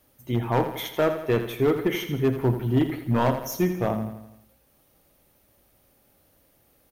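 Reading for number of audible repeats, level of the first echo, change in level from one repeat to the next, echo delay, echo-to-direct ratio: 5, −10.0 dB, −5.5 dB, 83 ms, −8.5 dB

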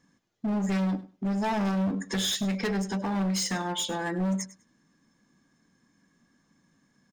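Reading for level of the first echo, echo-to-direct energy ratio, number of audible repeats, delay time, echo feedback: −17.0 dB, −17.0 dB, 2, 100 ms, 18%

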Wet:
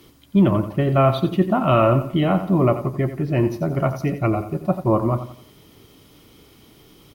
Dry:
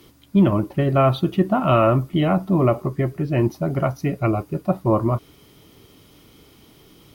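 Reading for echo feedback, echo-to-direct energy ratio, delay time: 38%, −10.5 dB, 88 ms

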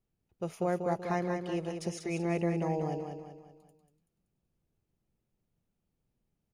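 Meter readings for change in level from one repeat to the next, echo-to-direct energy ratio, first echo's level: −7.5 dB, −5.0 dB, −6.0 dB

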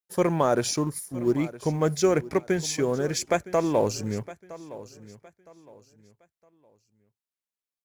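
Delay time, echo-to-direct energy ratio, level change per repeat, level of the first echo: 963 ms, −17.0 dB, −10.5 dB, −17.5 dB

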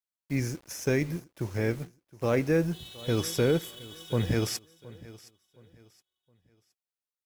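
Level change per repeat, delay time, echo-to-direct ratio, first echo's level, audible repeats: −10.0 dB, 718 ms, −19.5 dB, −20.0 dB, 2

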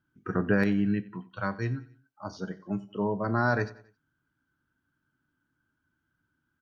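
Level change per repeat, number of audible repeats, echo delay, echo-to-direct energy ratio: −7.0 dB, 3, 91 ms, −18.5 dB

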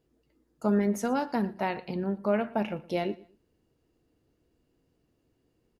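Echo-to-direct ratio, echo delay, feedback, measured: −20.5 dB, 117 ms, 28%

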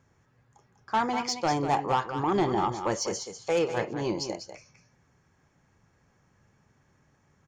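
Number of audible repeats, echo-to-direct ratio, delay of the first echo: 1, −9.0 dB, 196 ms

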